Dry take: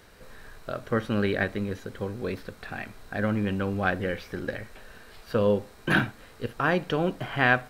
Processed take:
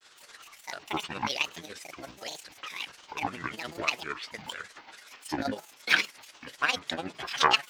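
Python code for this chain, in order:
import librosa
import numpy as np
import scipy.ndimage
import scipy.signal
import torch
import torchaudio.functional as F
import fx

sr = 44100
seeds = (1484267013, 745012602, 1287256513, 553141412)

y = x * (1.0 - 0.61 / 2.0 + 0.61 / 2.0 * np.cos(2.0 * np.pi * 17.0 * (np.arange(len(x)) / sr)))
y = fx.weighting(y, sr, curve='ITU-R 468')
y = fx.granulator(y, sr, seeds[0], grain_ms=100.0, per_s=20.0, spray_ms=22.0, spread_st=12)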